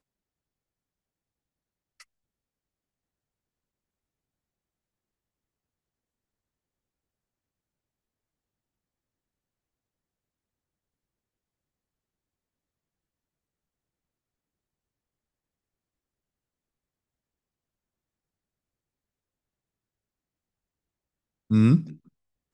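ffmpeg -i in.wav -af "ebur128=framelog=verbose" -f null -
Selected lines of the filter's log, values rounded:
Integrated loudness:
  I:         -21.8 LUFS
  Threshold: -35.2 LUFS
Loudness range:
  LRA:         5.8 LU
  Threshold: -54.2 LUFS
  LRA low:   -34.7 LUFS
  LRA high:  -28.8 LUFS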